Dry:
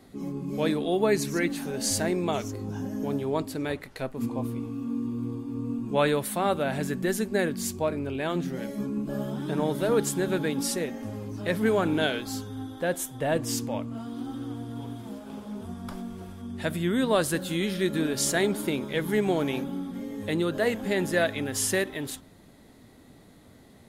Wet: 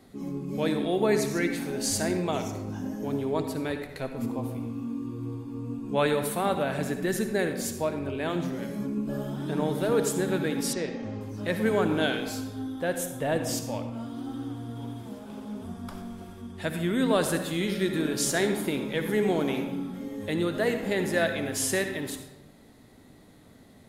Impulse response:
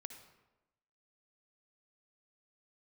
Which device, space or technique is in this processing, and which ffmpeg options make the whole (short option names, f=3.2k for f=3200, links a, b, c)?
bathroom: -filter_complex "[1:a]atrim=start_sample=2205[a];[0:a][a]afir=irnorm=-1:irlink=0,asettb=1/sr,asplit=3[b][c][d];[b]atrim=end=10.734[e];[c]atrim=start=10.73:end=11.21,asetpts=PTS-STARTPTS,afade=t=in:d=0.004:c=qsin,afade=t=out:st=0.476:d=0.004:c=qsin,lowpass=f=5.8k:w=0.5412,lowpass=f=5.8k:w=1.3066[f];[d]atrim=start=11.206[g];[e][f]acrossfade=d=0.004:c1=hsin:c2=qsin[h];[h][g]acrossfade=d=0.004:c1=qsin:c2=hsin,volume=4dB"